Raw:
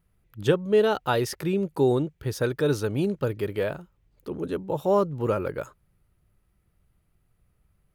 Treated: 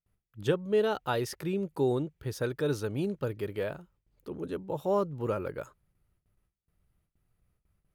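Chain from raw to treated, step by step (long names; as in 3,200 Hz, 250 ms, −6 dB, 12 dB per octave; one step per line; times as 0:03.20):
noise gate with hold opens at −57 dBFS
level −6 dB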